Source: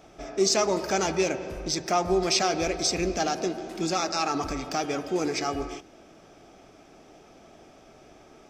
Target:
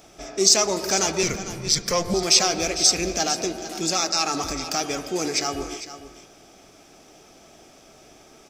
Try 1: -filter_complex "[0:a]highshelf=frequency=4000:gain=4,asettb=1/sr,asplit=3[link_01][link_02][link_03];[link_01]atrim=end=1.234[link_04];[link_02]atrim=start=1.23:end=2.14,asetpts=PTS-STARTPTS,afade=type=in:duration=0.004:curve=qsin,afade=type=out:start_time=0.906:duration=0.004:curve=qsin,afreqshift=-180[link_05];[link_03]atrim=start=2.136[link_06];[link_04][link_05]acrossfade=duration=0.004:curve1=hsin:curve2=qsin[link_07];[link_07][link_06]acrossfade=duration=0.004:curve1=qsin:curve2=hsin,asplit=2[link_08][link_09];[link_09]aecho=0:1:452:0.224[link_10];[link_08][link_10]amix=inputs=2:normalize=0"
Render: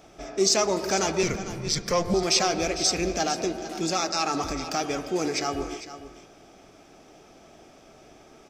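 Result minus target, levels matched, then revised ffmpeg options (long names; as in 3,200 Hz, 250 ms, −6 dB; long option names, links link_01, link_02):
8,000 Hz band −3.0 dB
-filter_complex "[0:a]highshelf=frequency=4000:gain=14,asettb=1/sr,asplit=3[link_01][link_02][link_03];[link_01]atrim=end=1.234[link_04];[link_02]atrim=start=1.23:end=2.14,asetpts=PTS-STARTPTS,afade=type=in:duration=0.004:curve=qsin,afade=type=out:start_time=0.906:duration=0.004:curve=qsin,afreqshift=-180[link_05];[link_03]atrim=start=2.136[link_06];[link_04][link_05]acrossfade=duration=0.004:curve1=hsin:curve2=qsin[link_07];[link_07][link_06]acrossfade=duration=0.004:curve1=qsin:curve2=hsin,asplit=2[link_08][link_09];[link_09]aecho=0:1:452:0.224[link_10];[link_08][link_10]amix=inputs=2:normalize=0"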